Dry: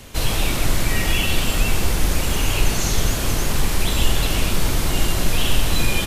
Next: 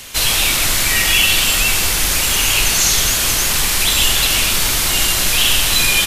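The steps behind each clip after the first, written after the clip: tilt shelf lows -8.5 dB; trim +4 dB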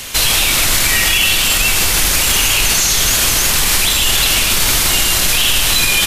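peak limiter -10 dBFS, peak gain reduction 8.5 dB; trim +6.5 dB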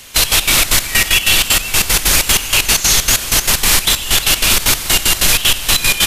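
trance gate "..x.x.xx.x" 190 bpm -12 dB; trim +2.5 dB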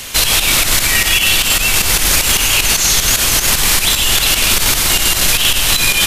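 loudness maximiser +11 dB; trim -1.5 dB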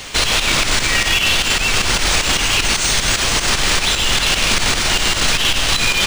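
decimation joined by straight lines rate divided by 3×; trim -2 dB

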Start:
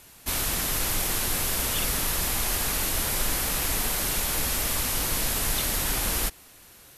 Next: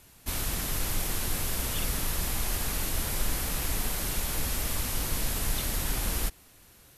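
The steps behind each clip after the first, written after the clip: bass shelf 250 Hz +7 dB; trim -6 dB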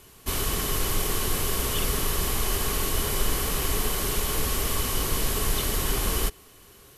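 small resonant body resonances 410/1100/3000 Hz, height 11 dB, ringing for 45 ms; trim +3.5 dB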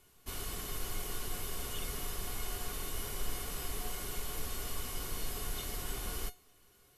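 feedback comb 720 Hz, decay 0.22 s, harmonics all, mix 80%; trim -1.5 dB

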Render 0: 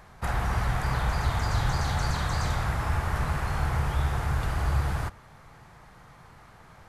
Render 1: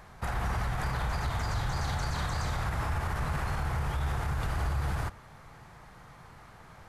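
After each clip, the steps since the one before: peak limiter -23 dBFS, peak gain reduction 8.5 dB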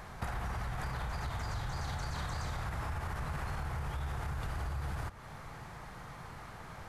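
compression 6:1, threshold -39 dBFS, peak gain reduction 11.5 dB; trim +4 dB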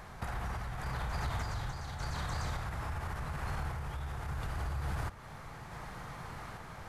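random-step tremolo; trim +3 dB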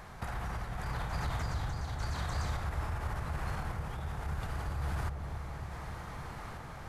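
feedback echo behind a low-pass 283 ms, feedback 72%, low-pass 730 Hz, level -6 dB

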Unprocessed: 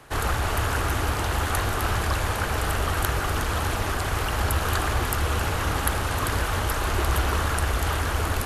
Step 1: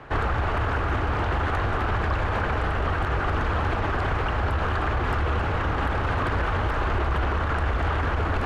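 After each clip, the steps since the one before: low-pass 2.2 kHz 12 dB/octave; peak limiter -23 dBFS, peak gain reduction 10.5 dB; trim +6.5 dB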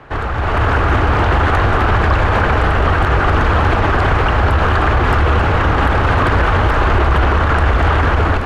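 level rider gain up to 8 dB; trim +3.5 dB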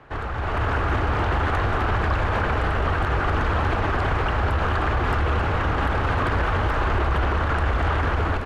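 speakerphone echo 230 ms, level -14 dB; trim -9 dB

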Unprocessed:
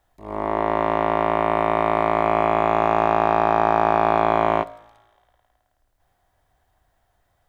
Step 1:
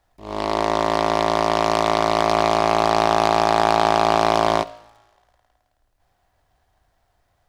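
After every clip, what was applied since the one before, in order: delay time shaken by noise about 2.8 kHz, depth 0.042 ms; trim +1 dB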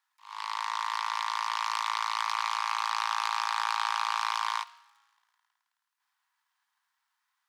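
steep high-pass 910 Hz 72 dB/octave; trim -7 dB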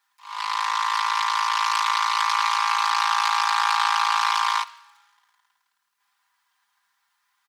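comb 5 ms, depth 94%; trim +6 dB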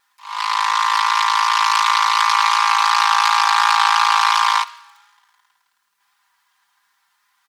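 vibrato 2.8 Hz 19 cents; trim +6.5 dB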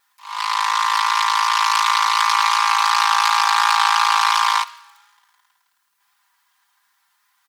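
treble shelf 9.8 kHz +7.5 dB; trim -1.5 dB

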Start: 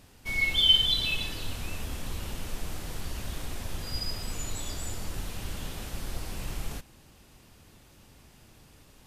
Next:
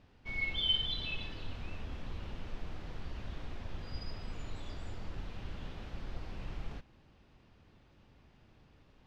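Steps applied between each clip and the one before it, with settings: distance through air 230 m; trim -6 dB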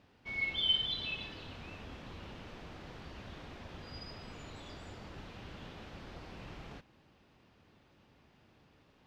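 high-pass 160 Hz 6 dB/octave; trim +1 dB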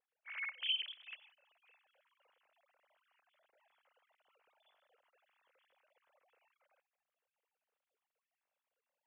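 formants replaced by sine waves; trim -8.5 dB

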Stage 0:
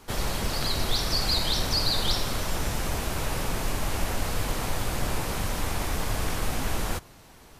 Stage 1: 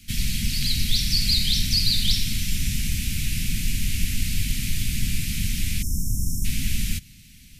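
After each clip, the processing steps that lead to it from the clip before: elliptic band-stop 220–2300 Hz, stop band 80 dB; spectral selection erased 5.82–6.45 s, 840–5200 Hz; trim +5.5 dB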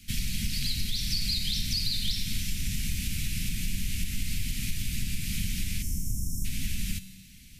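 compression 5:1, threshold -22 dBFS, peak gain reduction 8 dB; feedback comb 190 Hz, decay 1.2 s, mix 70%; trim +7 dB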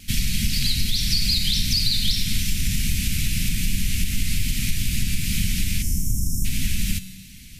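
vibrato 2.5 Hz 21 cents; trim +8 dB

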